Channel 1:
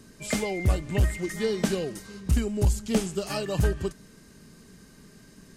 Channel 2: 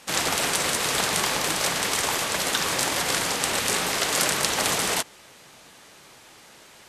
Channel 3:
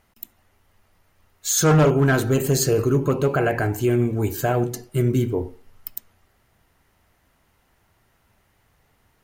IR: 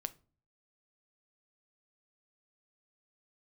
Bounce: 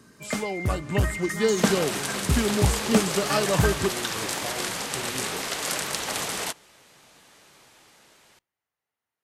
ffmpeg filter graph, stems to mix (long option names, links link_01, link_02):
-filter_complex "[0:a]highpass=84,equalizer=frequency=1200:width_type=o:width=1.1:gain=7,dynaudnorm=framelen=150:gausssize=11:maxgain=7dB,volume=-4.5dB,asplit=2[link_01][link_02];[link_02]volume=-10dB[link_03];[1:a]dynaudnorm=framelen=270:gausssize=7:maxgain=3dB,adelay=1500,volume=-8.5dB,asplit=2[link_04][link_05];[link_05]volume=-11dB[link_06];[2:a]afwtdn=0.0355,highpass=frequency=580:poles=1,acompressor=threshold=-28dB:ratio=6,volume=-9dB,asplit=2[link_07][link_08];[link_08]volume=-4dB[link_09];[3:a]atrim=start_sample=2205[link_10];[link_03][link_06][link_09]amix=inputs=3:normalize=0[link_11];[link_11][link_10]afir=irnorm=-1:irlink=0[link_12];[link_01][link_04][link_07][link_12]amix=inputs=4:normalize=0"